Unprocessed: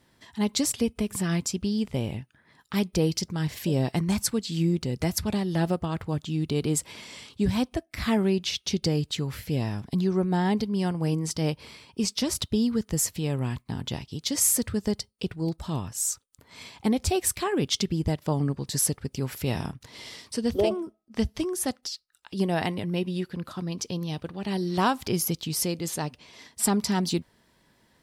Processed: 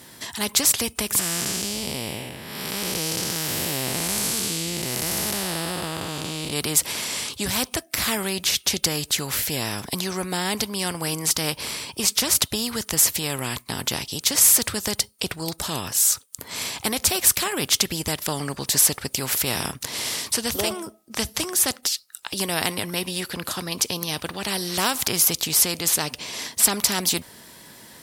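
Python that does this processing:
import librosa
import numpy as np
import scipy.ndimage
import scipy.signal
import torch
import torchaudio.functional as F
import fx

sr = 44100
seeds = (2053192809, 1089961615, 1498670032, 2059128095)

y = fx.spec_blur(x, sr, span_ms=384.0, at=(1.19, 6.53))
y = fx.highpass(y, sr, hz=130.0, slope=6)
y = fx.peak_eq(y, sr, hz=13000.0, db=13.0, octaves=1.7)
y = fx.spectral_comp(y, sr, ratio=2.0)
y = F.gain(torch.from_numpy(y), -1.5).numpy()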